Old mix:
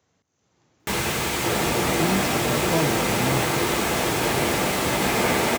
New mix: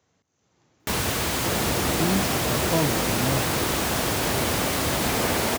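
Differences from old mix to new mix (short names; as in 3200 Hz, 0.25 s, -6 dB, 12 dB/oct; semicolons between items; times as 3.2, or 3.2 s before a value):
first sound: add high shelf 4200 Hz +5.5 dB; second sound -3.5 dB; reverb: off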